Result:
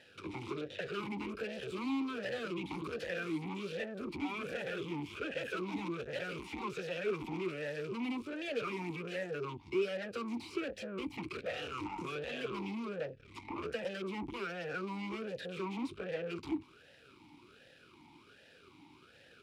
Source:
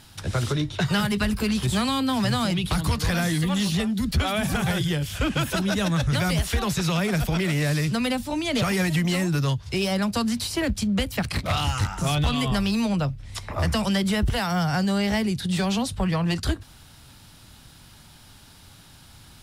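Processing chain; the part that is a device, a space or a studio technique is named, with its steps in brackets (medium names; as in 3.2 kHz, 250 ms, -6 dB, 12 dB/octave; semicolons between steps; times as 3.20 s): talk box (valve stage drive 34 dB, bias 0.7; talking filter e-u 1.3 Hz); trim +11 dB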